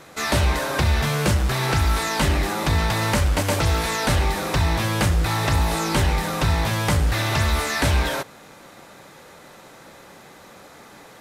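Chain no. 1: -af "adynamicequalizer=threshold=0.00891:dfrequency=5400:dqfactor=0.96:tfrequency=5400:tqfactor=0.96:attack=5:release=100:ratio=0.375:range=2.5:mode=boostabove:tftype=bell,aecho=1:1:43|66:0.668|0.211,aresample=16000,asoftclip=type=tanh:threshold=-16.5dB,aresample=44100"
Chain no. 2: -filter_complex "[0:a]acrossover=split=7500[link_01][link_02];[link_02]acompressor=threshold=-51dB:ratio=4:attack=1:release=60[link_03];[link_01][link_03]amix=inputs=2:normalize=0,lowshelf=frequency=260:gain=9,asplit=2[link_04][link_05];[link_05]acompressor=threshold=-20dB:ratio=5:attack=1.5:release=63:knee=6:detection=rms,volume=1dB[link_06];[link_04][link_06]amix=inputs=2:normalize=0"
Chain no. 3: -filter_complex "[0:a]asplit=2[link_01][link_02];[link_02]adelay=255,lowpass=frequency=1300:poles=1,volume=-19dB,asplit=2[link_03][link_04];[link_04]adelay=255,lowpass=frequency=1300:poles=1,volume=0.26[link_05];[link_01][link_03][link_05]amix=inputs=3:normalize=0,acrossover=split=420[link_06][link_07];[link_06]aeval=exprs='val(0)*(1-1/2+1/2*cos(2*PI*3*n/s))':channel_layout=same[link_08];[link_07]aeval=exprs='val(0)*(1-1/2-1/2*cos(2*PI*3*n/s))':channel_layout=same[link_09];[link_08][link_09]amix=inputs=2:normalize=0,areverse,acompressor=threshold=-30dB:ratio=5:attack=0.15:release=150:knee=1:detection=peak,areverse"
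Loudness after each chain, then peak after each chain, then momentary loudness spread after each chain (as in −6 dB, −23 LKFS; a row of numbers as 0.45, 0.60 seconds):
−22.0, −13.0, −35.5 LKFS; −13.5, −1.5, −25.0 dBFS; 1, 2, 15 LU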